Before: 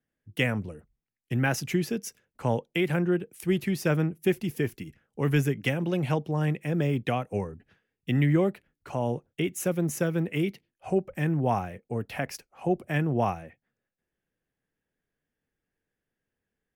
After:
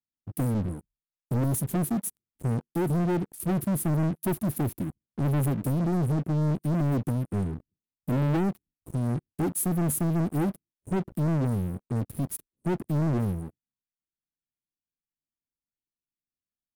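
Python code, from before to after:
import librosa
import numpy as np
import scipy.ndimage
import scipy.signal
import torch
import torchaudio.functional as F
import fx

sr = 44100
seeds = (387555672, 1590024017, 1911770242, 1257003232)

y = scipy.signal.sosfilt(scipy.signal.ellip(3, 1.0, 40, [320.0, 9200.0], 'bandstop', fs=sr, output='sos'), x)
y = fx.leveller(y, sr, passes=5)
y = y * 10.0 ** (-7.0 / 20.0)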